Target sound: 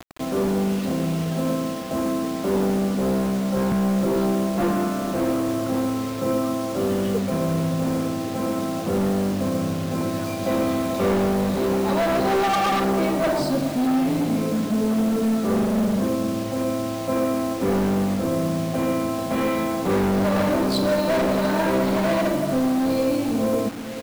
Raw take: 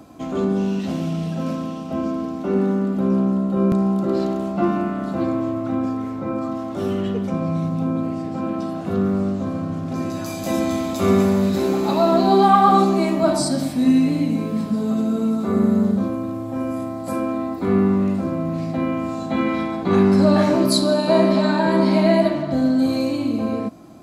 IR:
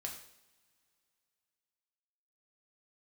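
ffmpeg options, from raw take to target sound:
-filter_complex "[0:a]lowpass=3.8k,asoftclip=type=hard:threshold=-19.5dB,equalizer=f=500:t=o:w=0.34:g=8,asplit=2[a][b];[b]adelay=439,lowpass=f=1k:p=1,volume=-12dB,asplit=2[c][d];[d]adelay=439,lowpass=f=1k:p=1,volume=0.39,asplit=2[e][f];[f]adelay=439,lowpass=f=1k:p=1,volume=0.39,asplit=2[g][h];[h]adelay=439,lowpass=f=1k:p=1,volume=0.39[i];[a][c][e][g][i]amix=inputs=5:normalize=0,acrusher=bits=5:mix=0:aa=0.000001"

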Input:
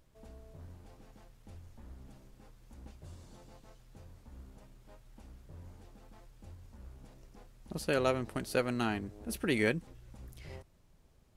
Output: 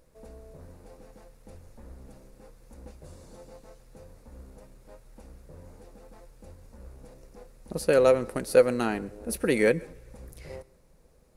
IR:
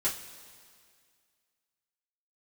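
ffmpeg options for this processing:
-filter_complex "[0:a]equalizer=f=100:t=o:w=0.33:g=-12,equalizer=f=500:t=o:w=0.33:g=11,equalizer=f=3.15k:t=o:w=0.33:g=-8,equalizer=f=10k:t=o:w=0.33:g=6,asplit=2[a][b];[1:a]atrim=start_sample=2205,adelay=118[c];[b][c]afir=irnorm=-1:irlink=0,volume=-28.5dB[d];[a][d]amix=inputs=2:normalize=0,volume=4.5dB"

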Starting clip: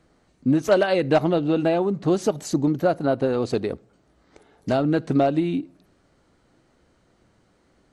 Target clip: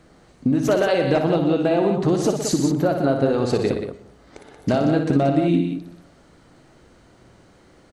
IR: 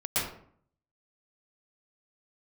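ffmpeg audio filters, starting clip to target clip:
-filter_complex "[0:a]acompressor=threshold=-26dB:ratio=5,aecho=1:1:58.31|122.4|180.8:0.447|0.316|0.398,asplit=2[a][b];[1:a]atrim=start_sample=2205[c];[b][c]afir=irnorm=-1:irlink=0,volume=-26.5dB[d];[a][d]amix=inputs=2:normalize=0,volume=8dB"

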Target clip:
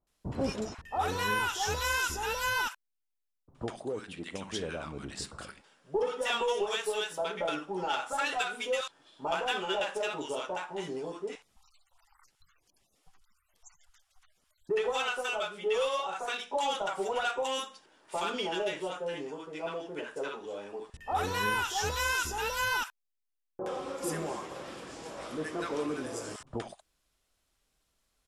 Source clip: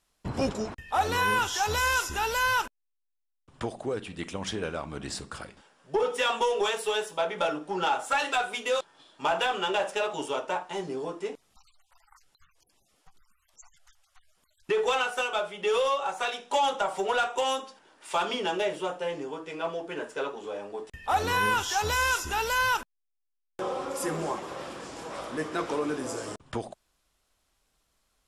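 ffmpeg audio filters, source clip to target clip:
-filter_complex "[0:a]asettb=1/sr,asplit=3[a][b][c];[a]atrim=end=3.794[d];[b]atrim=start=3.79:end=4.59,asetpts=PTS-STARTPTS,afade=t=in:d=0.004:c=qsin,afade=t=out:st=0.796:d=0.004:c=qsin,lowshelf=f=110:g=-9.5[e];[c]atrim=start=4.586[f];[d][e]acrossfade=d=0.004:c1=hsin:c2=qsin[g];[g][f]acrossfade=d=0.004:c1=qsin:c2=hsin,acrossover=split=970[h][i];[i]adelay=70[j];[h][j]amix=inputs=2:normalize=0,volume=-3dB"

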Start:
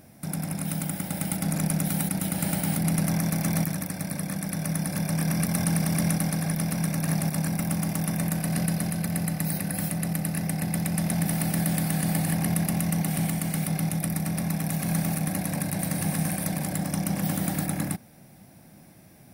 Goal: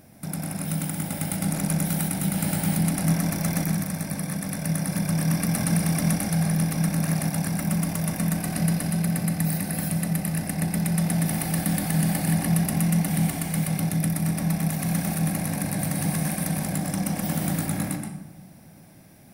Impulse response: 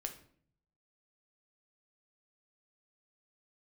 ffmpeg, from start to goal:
-filter_complex "[0:a]asplit=2[a][b];[1:a]atrim=start_sample=2205,asetrate=22932,aresample=44100,adelay=125[c];[b][c]afir=irnorm=-1:irlink=0,volume=-6.5dB[d];[a][d]amix=inputs=2:normalize=0"

